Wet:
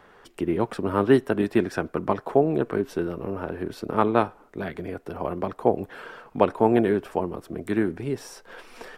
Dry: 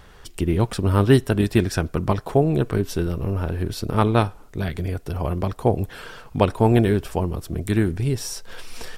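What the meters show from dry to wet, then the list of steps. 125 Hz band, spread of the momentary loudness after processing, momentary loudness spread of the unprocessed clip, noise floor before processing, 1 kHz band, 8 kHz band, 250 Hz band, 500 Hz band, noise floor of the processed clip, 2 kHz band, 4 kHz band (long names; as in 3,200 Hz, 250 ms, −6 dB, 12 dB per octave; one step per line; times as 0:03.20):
−13.0 dB, 15 LU, 12 LU, −46 dBFS, 0.0 dB, below −10 dB, −2.5 dB, −0.5 dB, −54 dBFS, −2.0 dB, −9.5 dB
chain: three-way crossover with the lows and the highs turned down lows −19 dB, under 200 Hz, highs −13 dB, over 2,300 Hz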